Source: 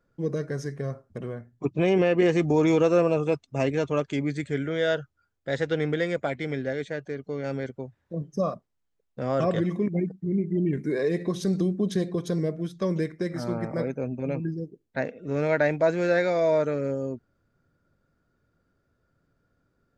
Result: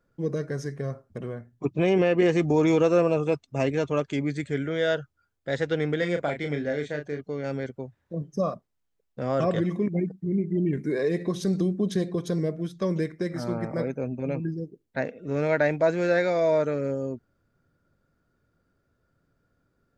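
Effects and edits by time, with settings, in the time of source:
0:05.98–0:07.21: double-tracking delay 34 ms −6.5 dB

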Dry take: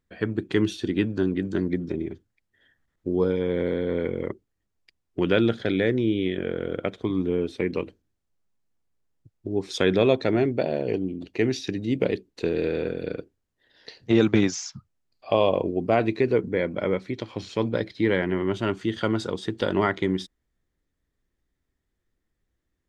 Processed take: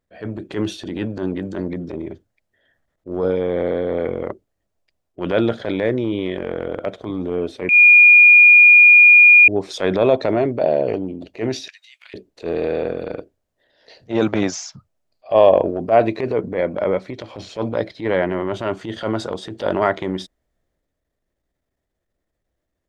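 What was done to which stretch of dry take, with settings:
0:07.69–0:09.48: beep over 2,430 Hz −6 dBFS
0:11.68–0:12.14: Bessel high-pass filter 2,200 Hz, order 8
whole clip: parametric band 620 Hz +12.5 dB 0.64 octaves; transient designer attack −10 dB, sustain +3 dB; dynamic equaliser 1,100 Hz, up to +4 dB, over −35 dBFS, Q 1.1

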